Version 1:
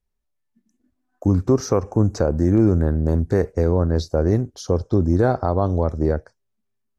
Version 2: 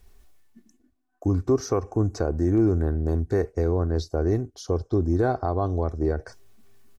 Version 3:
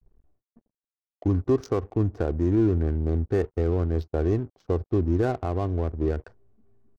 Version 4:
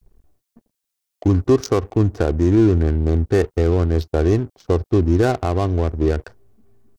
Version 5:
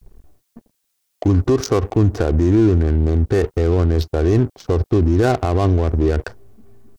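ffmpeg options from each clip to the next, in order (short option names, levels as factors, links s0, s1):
-af "areverse,acompressor=mode=upward:threshold=0.0501:ratio=2.5,areverse,aecho=1:1:2.7:0.42,volume=0.531"
-af "adynamicequalizer=threshold=0.0112:dfrequency=870:dqfactor=0.92:tfrequency=870:tqfactor=0.92:attack=5:release=100:ratio=0.375:range=3:mode=cutabove:tftype=bell,aeval=exprs='sgn(val(0))*max(abs(val(0))-0.00224,0)':c=same,adynamicsmooth=sensitivity=8:basefreq=590"
-af "highshelf=f=2600:g=10.5,volume=2.24"
-af "alimiter=limit=0.15:level=0:latency=1:release=53,volume=2.82"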